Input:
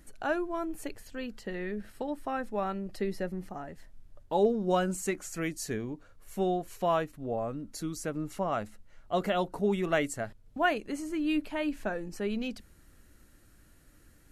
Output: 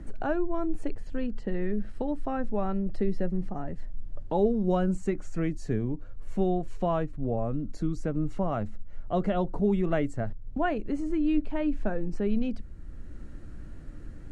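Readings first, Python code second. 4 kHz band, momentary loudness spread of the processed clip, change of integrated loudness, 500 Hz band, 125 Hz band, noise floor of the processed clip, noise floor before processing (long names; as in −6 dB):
−8.5 dB, 20 LU, +2.0 dB, +1.0 dB, +7.5 dB, −41 dBFS, −59 dBFS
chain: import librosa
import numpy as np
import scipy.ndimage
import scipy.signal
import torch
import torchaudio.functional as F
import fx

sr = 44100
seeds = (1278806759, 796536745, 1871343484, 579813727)

y = scipy.signal.sosfilt(scipy.signal.butter(4, 9400.0, 'lowpass', fs=sr, output='sos'), x)
y = fx.tilt_eq(y, sr, slope=-3.5)
y = fx.band_squash(y, sr, depth_pct=40)
y = y * librosa.db_to_amplitude(-2.0)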